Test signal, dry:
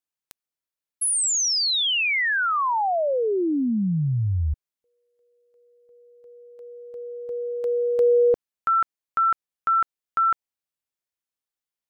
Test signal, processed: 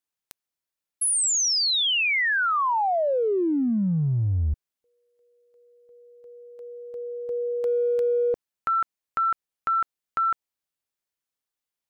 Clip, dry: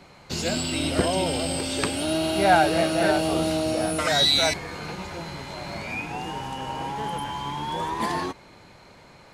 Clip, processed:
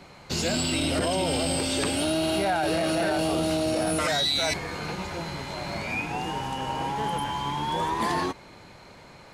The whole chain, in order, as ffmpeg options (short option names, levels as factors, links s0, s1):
-af "acompressor=threshold=0.0794:ratio=10:attack=0.97:release=41:knee=1:detection=peak,volume=1.19"